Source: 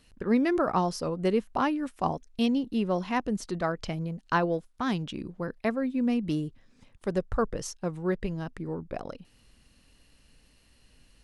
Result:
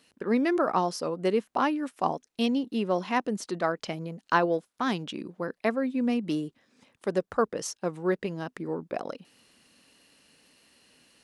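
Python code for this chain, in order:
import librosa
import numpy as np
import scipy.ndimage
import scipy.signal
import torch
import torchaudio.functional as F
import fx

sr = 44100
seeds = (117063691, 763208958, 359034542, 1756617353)

p1 = scipy.signal.sosfilt(scipy.signal.butter(2, 240.0, 'highpass', fs=sr, output='sos'), x)
p2 = fx.rider(p1, sr, range_db=4, speed_s=2.0)
p3 = p1 + (p2 * librosa.db_to_amplitude(-2.0))
y = p3 * librosa.db_to_amplitude(-3.0)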